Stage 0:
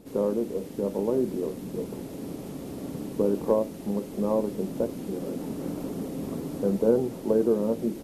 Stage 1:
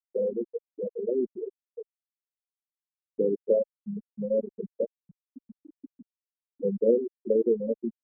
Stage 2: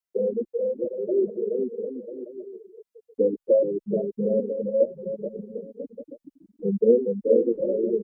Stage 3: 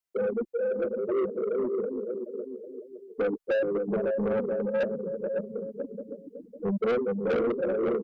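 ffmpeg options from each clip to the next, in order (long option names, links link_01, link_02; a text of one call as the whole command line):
ffmpeg -i in.wav -af "afftfilt=real='re*gte(hypot(re,im),0.316)':imag='im*gte(hypot(re,im),0.316)':win_size=1024:overlap=0.75,equalizer=frequency=130:width=0.37:gain=-9.5,volume=4.5dB" out.wav
ffmpeg -i in.wav -filter_complex "[0:a]aecho=1:1:430|752.5|994.4|1176|1312:0.631|0.398|0.251|0.158|0.1,asplit=2[link_01][link_02];[link_02]adelay=2.6,afreqshift=0.75[link_03];[link_01][link_03]amix=inputs=2:normalize=1,volume=6dB" out.wav
ffmpeg -i in.wav -af "aecho=1:1:554:0.422,asoftclip=type=tanh:threshold=-22.5dB" out.wav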